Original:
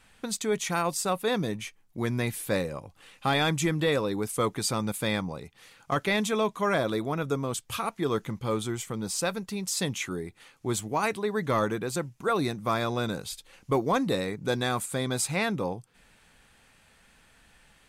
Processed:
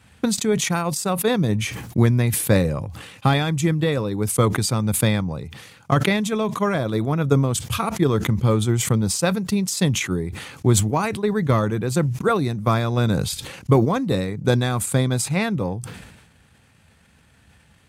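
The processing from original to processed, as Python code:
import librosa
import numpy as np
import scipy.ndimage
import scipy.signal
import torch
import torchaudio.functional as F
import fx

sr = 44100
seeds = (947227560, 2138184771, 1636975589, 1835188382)

y = fx.transient(x, sr, attack_db=7, sustain_db=-6)
y = scipy.signal.sosfilt(scipy.signal.butter(4, 79.0, 'highpass', fs=sr, output='sos'), y)
y = fx.low_shelf(y, sr, hz=100.0, db=9.5)
y = fx.rider(y, sr, range_db=10, speed_s=0.5)
y = fx.low_shelf(y, sr, hz=220.0, db=10.5)
y = fx.sustainer(y, sr, db_per_s=50.0)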